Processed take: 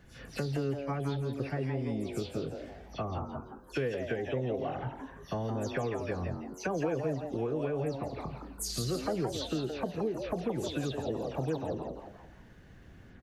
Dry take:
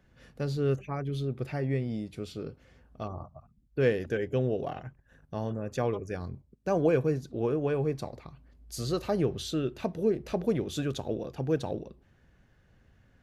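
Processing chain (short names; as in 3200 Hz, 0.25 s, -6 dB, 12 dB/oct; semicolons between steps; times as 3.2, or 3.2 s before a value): spectral delay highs early, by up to 0.123 s; compressor 4:1, threshold -40 dBFS, peak gain reduction 17 dB; on a send: frequency-shifting echo 0.169 s, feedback 34%, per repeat +140 Hz, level -7 dB; on the sum: gain +7.5 dB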